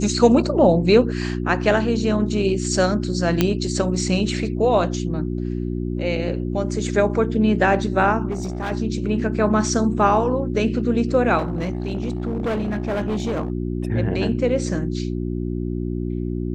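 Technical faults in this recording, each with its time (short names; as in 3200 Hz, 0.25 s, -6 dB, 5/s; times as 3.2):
hum 60 Hz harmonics 6 -25 dBFS
3.41 pop -3 dBFS
8.3–8.72 clipped -22 dBFS
11.38–13.5 clipped -19.5 dBFS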